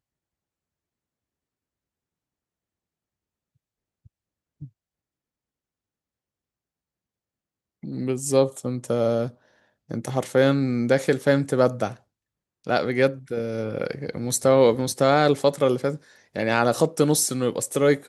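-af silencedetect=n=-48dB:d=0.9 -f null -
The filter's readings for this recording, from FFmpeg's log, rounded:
silence_start: 0.00
silence_end: 4.06 | silence_duration: 4.06
silence_start: 4.68
silence_end: 7.83 | silence_duration: 3.15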